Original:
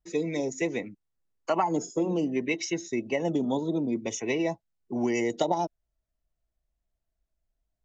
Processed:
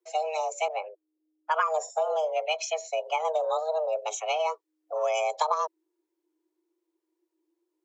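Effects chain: frequency shift +310 Hz; 0.68–1.72 s: level-controlled noise filter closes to 480 Hz, open at -21 dBFS

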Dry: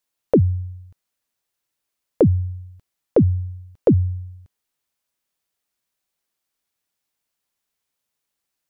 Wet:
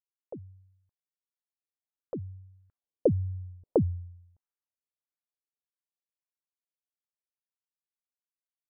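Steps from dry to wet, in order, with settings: Doppler pass-by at 3.48 s, 12 m/s, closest 2.2 m; LFO low-pass sine 1.6 Hz 440–1600 Hz; trim -5 dB

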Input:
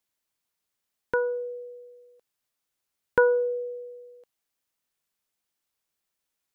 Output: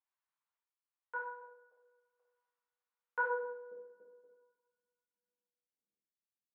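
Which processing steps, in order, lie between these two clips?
random-step tremolo, depth 95%; ladder band-pass 1.2 kHz, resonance 40%, from 3.24 s 250 Hz; two-slope reverb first 0.74 s, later 2.4 s, from -25 dB, DRR -7 dB; trim -1 dB

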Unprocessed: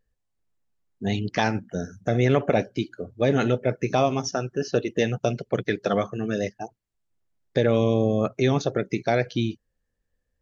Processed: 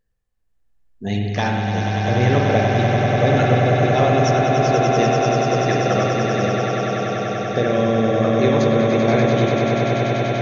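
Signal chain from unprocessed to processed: echo with a slow build-up 97 ms, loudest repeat 8, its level -7 dB; spring tank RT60 1.6 s, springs 49 ms, chirp 65 ms, DRR 1 dB

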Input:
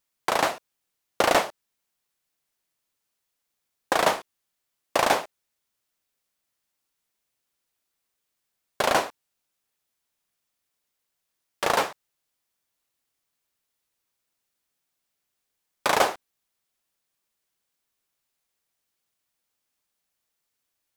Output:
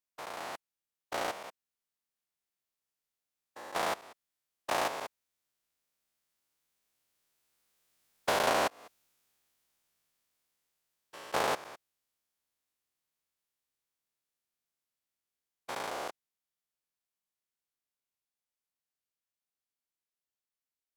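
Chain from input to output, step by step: spectrogram pixelated in time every 200 ms; Doppler pass-by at 8.49 s, 17 m/s, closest 14 m; compression 10:1, threshold -33 dBFS, peak gain reduction 11 dB; trim +8.5 dB

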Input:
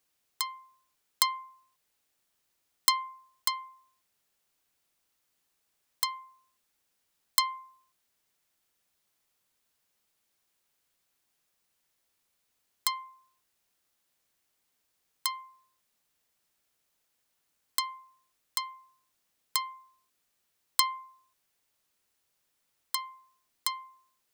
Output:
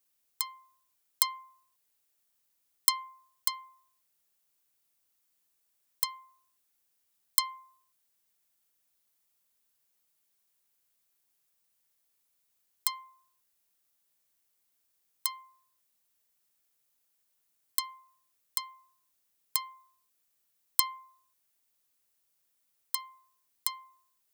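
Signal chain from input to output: treble shelf 7.7 kHz +10.5 dB; trim -6 dB

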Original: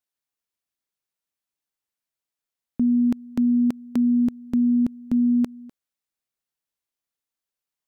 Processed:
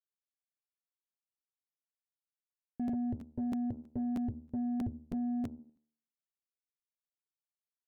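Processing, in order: gate with hold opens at -31 dBFS; de-hum 76.11 Hz, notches 18; 2.93–5.59 s: resonant low shelf 140 Hz +9.5 dB, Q 3; saturation -30 dBFS, distortion -9 dB; boxcar filter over 37 samples; crackling interface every 0.32 s, samples 512, repeat, from 0.31 s; trim -1.5 dB

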